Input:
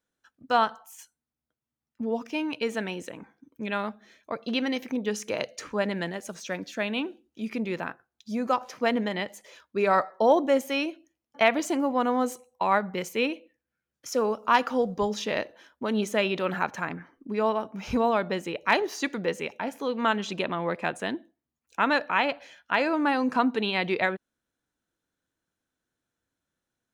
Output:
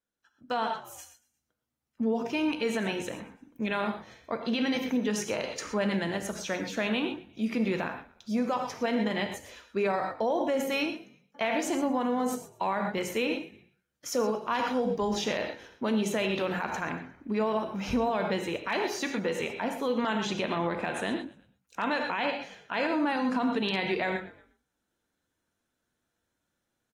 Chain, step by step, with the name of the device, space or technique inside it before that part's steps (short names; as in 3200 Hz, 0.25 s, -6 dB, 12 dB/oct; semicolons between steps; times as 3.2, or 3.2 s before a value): dynamic EQ 1300 Hz, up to -6 dB, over -43 dBFS, Q 6.3; frequency-shifting echo 0.118 s, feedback 45%, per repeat -47 Hz, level -22.5 dB; non-linear reverb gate 0.15 s flat, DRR 6.5 dB; low-bitrate web radio (AGC gain up to 9.5 dB; limiter -11.5 dBFS, peak gain reduction 9.5 dB; gain -8 dB; AAC 48 kbps 48000 Hz)